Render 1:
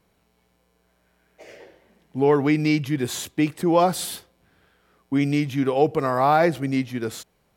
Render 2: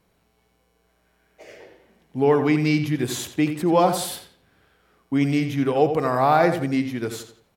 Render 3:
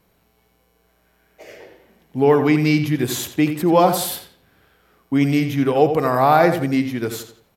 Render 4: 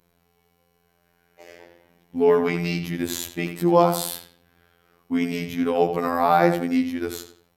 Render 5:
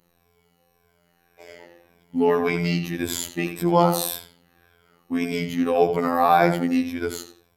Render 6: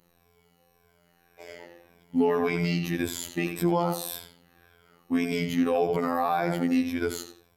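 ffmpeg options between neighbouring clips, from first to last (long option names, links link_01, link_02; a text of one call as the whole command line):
ffmpeg -i in.wav -filter_complex "[0:a]asplit=2[link_01][link_02];[link_02]adelay=86,lowpass=frequency=4000:poles=1,volume=-8.5dB,asplit=2[link_03][link_04];[link_04]adelay=86,lowpass=frequency=4000:poles=1,volume=0.38,asplit=2[link_05][link_06];[link_06]adelay=86,lowpass=frequency=4000:poles=1,volume=0.38,asplit=2[link_07][link_08];[link_08]adelay=86,lowpass=frequency=4000:poles=1,volume=0.38[link_09];[link_01][link_03][link_05][link_07][link_09]amix=inputs=5:normalize=0" out.wav
ffmpeg -i in.wav -af "equalizer=frequency=13000:width=7.9:gain=14.5,volume=3.5dB" out.wav
ffmpeg -i in.wav -af "afftfilt=real='hypot(re,im)*cos(PI*b)':imag='0':win_size=2048:overlap=0.75,volume=-1dB" out.wav
ffmpeg -i in.wav -af "afftfilt=real='re*pow(10,10/40*sin(2*PI*(1.7*log(max(b,1)*sr/1024/100)/log(2)-(-1.8)*(pts-256)/sr)))':imag='im*pow(10,10/40*sin(2*PI*(1.7*log(max(b,1)*sr/1024/100)/log(2)-(-1.8)*(pts-256)/sr)))':win_size=1024:overlap=0.75" out.wav
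ffmpeg -i in.wav -af "alimiter=limit=-12.5dB:level=0:latency=1:release=139" out.wav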